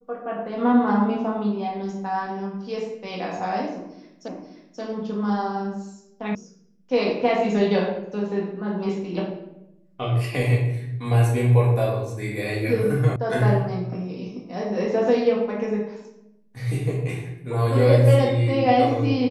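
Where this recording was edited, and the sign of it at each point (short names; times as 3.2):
4.28 repeat of the last 0.53 s
6.35 sound cut off
13.16 sound cut off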